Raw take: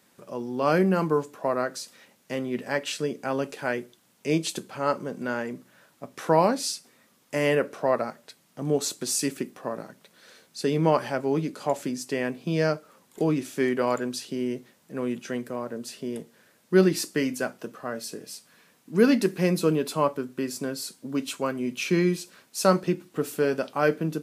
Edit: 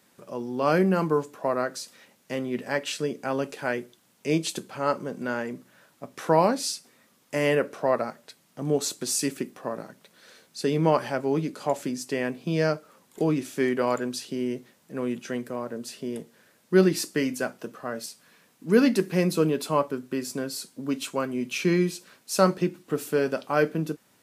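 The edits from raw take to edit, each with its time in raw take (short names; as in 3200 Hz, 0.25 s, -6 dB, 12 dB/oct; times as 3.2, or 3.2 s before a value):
18.06–18.32 cut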